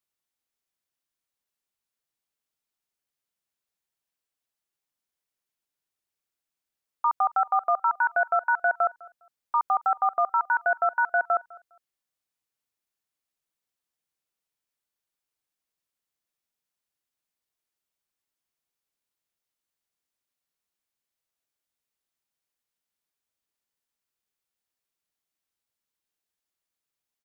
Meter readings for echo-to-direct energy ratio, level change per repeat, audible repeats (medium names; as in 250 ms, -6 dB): -22.5 dB, no regular repeats, 1